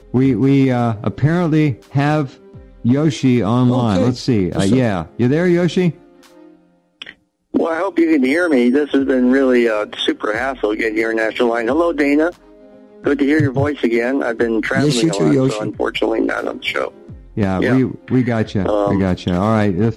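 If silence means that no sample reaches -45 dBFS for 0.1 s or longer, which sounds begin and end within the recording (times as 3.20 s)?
7.02–7.14 s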